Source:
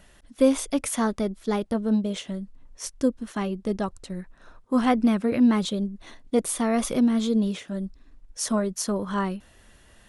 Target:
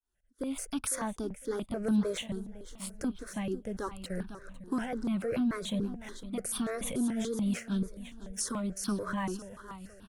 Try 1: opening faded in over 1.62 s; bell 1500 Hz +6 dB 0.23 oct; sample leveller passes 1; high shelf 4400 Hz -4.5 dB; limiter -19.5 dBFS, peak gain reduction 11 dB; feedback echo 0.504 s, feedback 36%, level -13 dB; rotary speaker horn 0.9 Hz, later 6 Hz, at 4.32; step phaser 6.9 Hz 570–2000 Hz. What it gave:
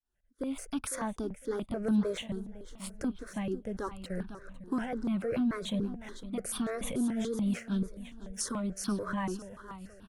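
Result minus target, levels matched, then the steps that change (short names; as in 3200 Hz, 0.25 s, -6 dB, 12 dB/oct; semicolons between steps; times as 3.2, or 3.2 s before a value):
8000 Hz band -2.5 dB
change: high shelf 4400 Hz +3 dB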